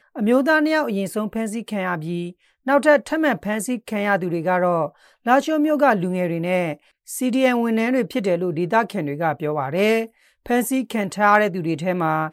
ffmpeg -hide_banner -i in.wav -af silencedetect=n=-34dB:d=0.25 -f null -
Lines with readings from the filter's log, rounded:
silence_start: 2.31
silence_end: 2.67 | silence_duration: 0.36
silence_start: 4.89
silence_end: 5.26 | silence_duration: 0.37
silence_start: 6.75
silence_end: 7.09 | silence_duration: 0.34
silence_start: 10.06
silence_end: 10.46 | silence_duration: 0.40